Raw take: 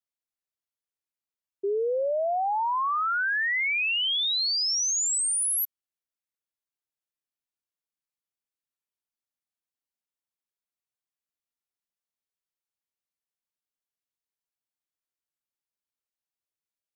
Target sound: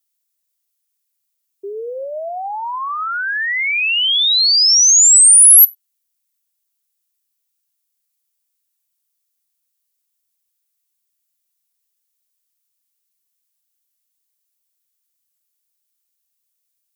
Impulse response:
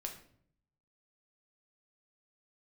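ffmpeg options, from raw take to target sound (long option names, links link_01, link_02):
-filter_complex "[0:a]crystalizer=i=8.5:c=0,asplit=2[link_01][link_02];[1:a]atrim=start_sample=2205,atrim=end_sample=4410[link_03];[link_02][link_03]afir=irnorm=-1:irlink=0,volume=-10dB[link_04];[link_01][link_04]amix=inputs=2:normalize=0,volume=-3.5dB"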